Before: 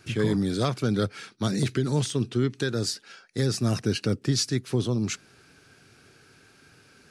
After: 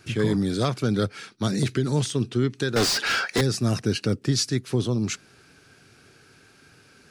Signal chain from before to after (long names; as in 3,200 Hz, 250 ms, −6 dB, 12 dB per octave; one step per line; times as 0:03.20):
0:02.76–0:03.41: mid-hump overdrive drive 36 dB, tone 3,400 Hz, clips at −14 dBFS
level +1.5 dB